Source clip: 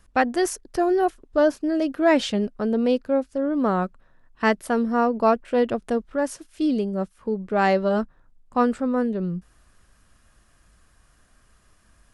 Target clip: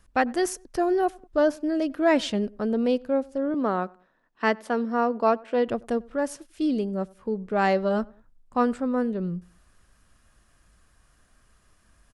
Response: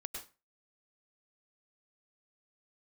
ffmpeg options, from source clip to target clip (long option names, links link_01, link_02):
-filter_complex "[0:a]asettb=1/sr,asplit=3[link_01][link_02][link_03];[link_01]atrim=end=3.544[link_04];[link_02]atrim=start=3.54:end=5.68,asetpts=PTS-STARTPTS,afade=type=in:duration=0.004:curve=qsin,afade=type=out:start_time=2.136:duration=0.004:curve=qsin,acrossover=split=180 7100:gain=0.0891 1 0.2[link_05][link_06][link_07];[link_05][link_06][link_07]amix=inputs=3:normalize=0[link_08];[link_03]atrim=start=5.676[link_09];[link_04][link_08]acrossfade=duration=0.004:curve1=hsin:curve2=qsin[link_10];[link_10][link_09]acrossfade=duration=0.004:curve1=qsin:curve2=hsin,asplit=2[link_11][link_12];[link_12]adelay=96,lowpass=frequency=1700:poles=1,volume=-24dB,asplit=2[link_13][link_14];[link_14]adelay=96,lowpass=frequency=1700:poles=1,volume=0.37[link_15];[link_11][link_13][link_15]amix=inputs=3:normalize=0,volume=-2.5dB"